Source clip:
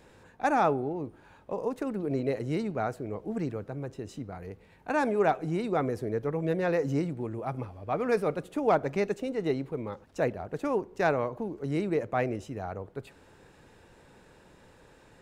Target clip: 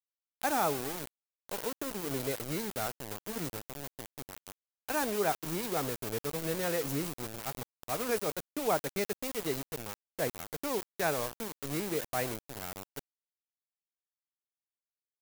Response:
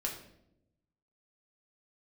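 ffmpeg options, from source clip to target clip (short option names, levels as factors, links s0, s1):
-af "aeval=exprs='val(0)*gte(abs(val(0)),0.0251)':c=same,aemphasis=mode=production:type=75kf,volume=0.501"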